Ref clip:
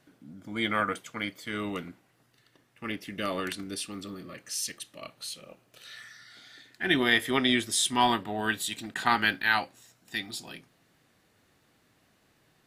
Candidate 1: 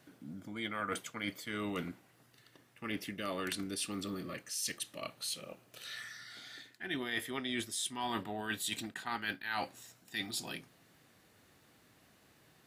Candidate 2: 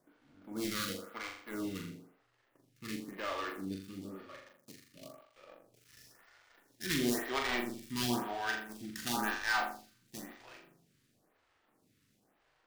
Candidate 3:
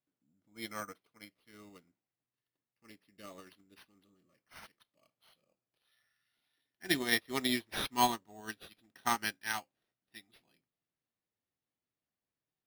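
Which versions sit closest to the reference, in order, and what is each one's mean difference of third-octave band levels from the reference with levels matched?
1, 2, 3; 6.5 dB, 9.0 dB, 12.5 dB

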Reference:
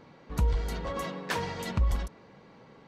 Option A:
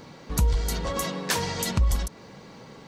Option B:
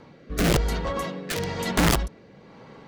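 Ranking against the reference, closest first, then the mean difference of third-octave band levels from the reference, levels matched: A, B; 4.0 dB, 5.5 dB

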